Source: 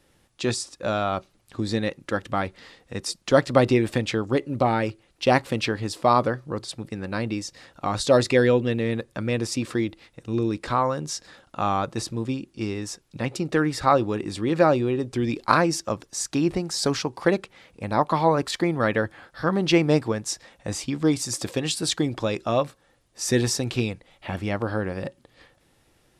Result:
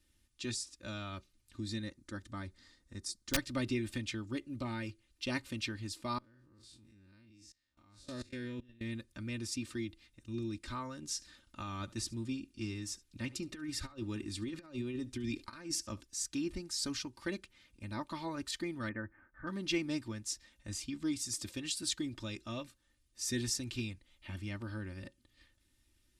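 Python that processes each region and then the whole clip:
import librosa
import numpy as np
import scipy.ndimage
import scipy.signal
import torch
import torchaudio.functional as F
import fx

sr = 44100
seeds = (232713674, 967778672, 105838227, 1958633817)

y = fx.chain(x, sr, fx.lowpass(hz=11000.0, slope=24),
    fx.peak_eq(hz=2700.0, db=-11.0, octaves=0.67),
    fx.overflow_wrap(gain_db=8.0), at=(1.82, 3.37))
y = fx.chain(y, sr, fx.spec_blur(span_ms=97.0),
    fx.level_steps(step_db=24), at=(6.18, 8.81))
y = fx.chain(y, sr, fx.over_compress(threshold_db=-24.0, ratio=-0.5),
    fx.echo_single(ms=71, db=-22.0), at=(11.02, 16.01))
y = fx.chain(y, sr, fx.steep_lowpass(hz=1900.0, slope=36),
    fx.peak_eq(hz=71.0, db=-4.0, octaves=1.8), at=(18.89, 19.47))
y = fx.tone_stack(y, sr, knobs='6-0-2')
y = y + 0.71 * np.pad(y, (int(3.3 * sr / 1000.0), 0))[:len(y)]
y = F.gain(torch.from_numpy(y), 4.0).numpy()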